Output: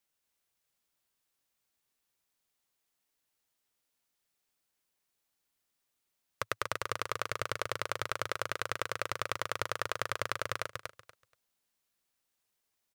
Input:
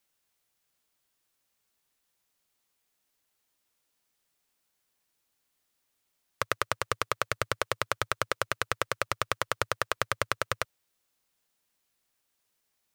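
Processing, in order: feedback echo 0.239 s, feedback 18%, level -5 dB; gain -5.5 dB

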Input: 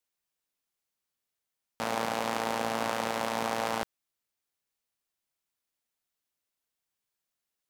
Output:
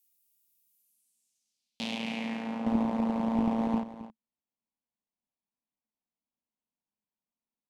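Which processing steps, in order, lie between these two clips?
2.66–3.8 half-waves squared off; limiter -18 dBFS, peak gain reduction 5 dB; resonant high shelf 1800 Hz +11 dB, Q 3; low-pass sweep 16000 Hz -> 1100 Hz, 0.67–2.74; EQ curve 140 Hz 0 dB, 220 Hz +14 dB, 360 Hz -1 dB, 970 Hz -1 dB, 1700 Hz -11 dB, 2400 Hz -13 dB, 11000 Hz +8 dB; echo 0.269 s -13.5 dB; gain -5.5 dB

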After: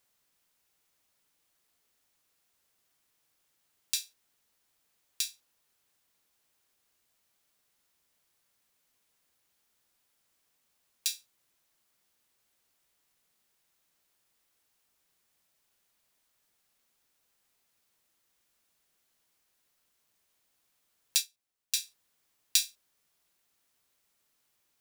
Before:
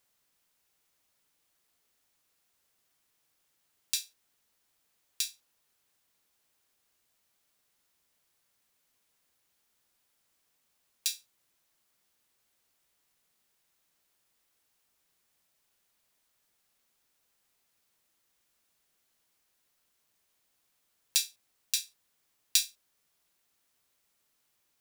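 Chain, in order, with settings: 21.17–21.74 upward expander 1.5:1, over -49 dBFS

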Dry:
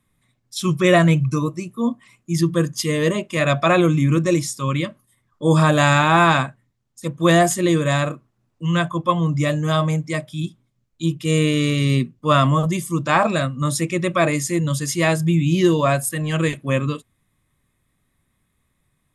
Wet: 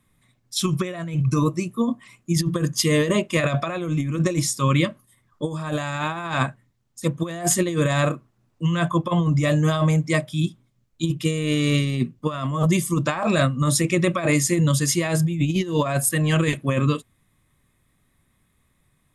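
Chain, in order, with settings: negative-ratio compressor -20 dBFS, ratio -0.5

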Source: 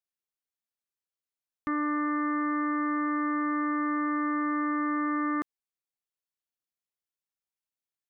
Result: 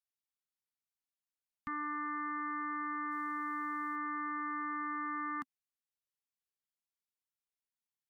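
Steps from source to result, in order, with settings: Chebyshev band-stop 260–800 Hz, order 3; 3.11–3.96 companded quantiser 8-bit; gain -5 dB; MP3 80 kbps 48000 Hz

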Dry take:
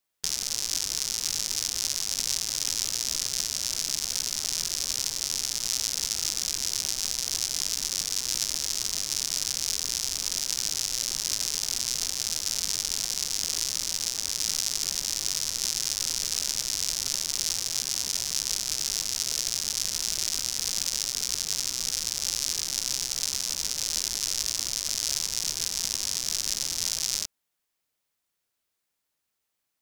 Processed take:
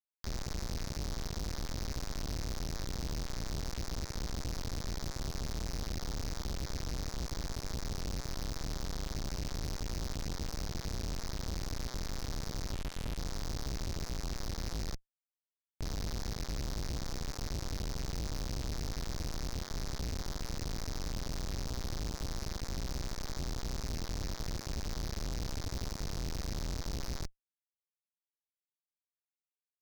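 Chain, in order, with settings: 12.73–13.17 LPF 2300 Hz 6 dB/oct; 14.95–15.82 metallic resonator 170 Hz, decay 0.32 s, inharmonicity 0.008; Schmitt trigger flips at -25 dBFS; Doppler distortion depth 0.1 ms; gain -4.5 dB

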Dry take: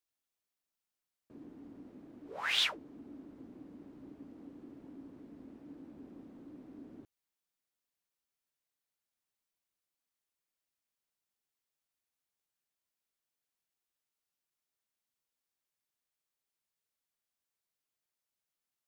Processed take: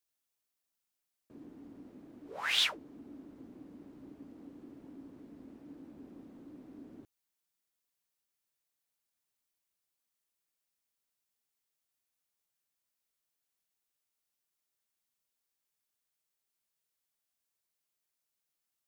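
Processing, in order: high shelf 5300 Hz +5 dB

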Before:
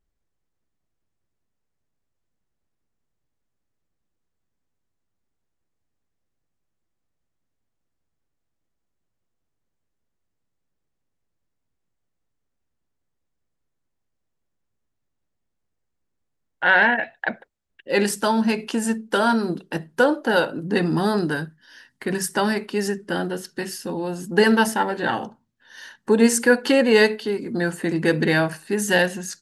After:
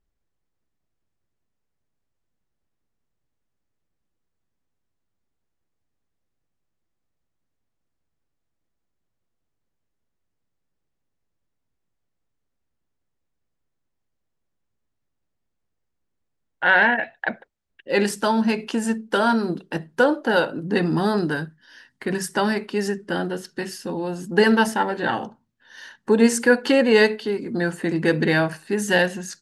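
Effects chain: high shelf 10000 Hz -10 dB

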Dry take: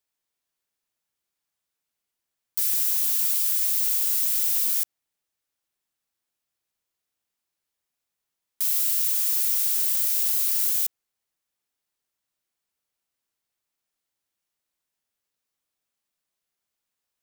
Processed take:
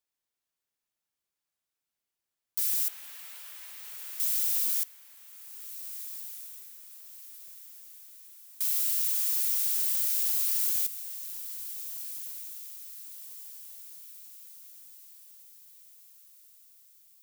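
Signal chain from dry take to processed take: 2.88–4.2 three-band isolator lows -21 dB, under 180 Hz, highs -18 dB, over 2800 Hz; diffused feedback echo 1.556 s, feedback 49%, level -11.5 dB; gain -4.5 dB

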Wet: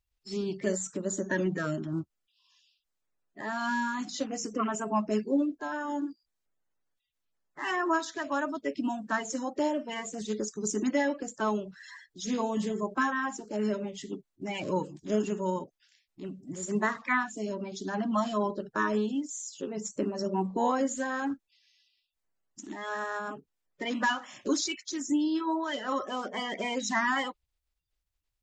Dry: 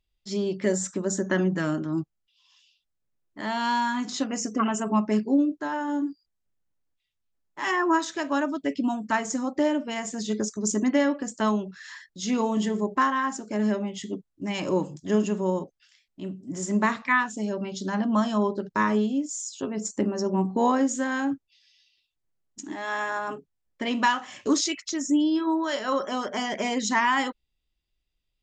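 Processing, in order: bin magnitudes rounded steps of 30 dB; gain -4.5 dB

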